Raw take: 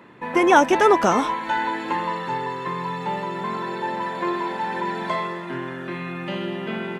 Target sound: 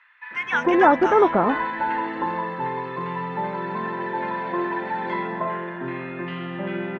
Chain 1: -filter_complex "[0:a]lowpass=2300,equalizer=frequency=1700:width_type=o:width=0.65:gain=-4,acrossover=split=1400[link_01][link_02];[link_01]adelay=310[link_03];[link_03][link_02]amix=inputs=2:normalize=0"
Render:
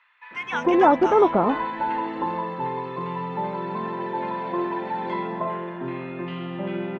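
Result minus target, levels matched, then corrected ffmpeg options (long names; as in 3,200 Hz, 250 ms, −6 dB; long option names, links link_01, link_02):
2,000 Hz band −5.5 dB
-filter_complex "[0:a]lowpass=2300,equalizer=frequency=1700:width_type=o:width=0.65:gain=4.5,acrossover=split=1400[link_01][link_02];[link_01]adelay=310[link_03];[link_03][link_02]amix=inputs=2:normalize=0"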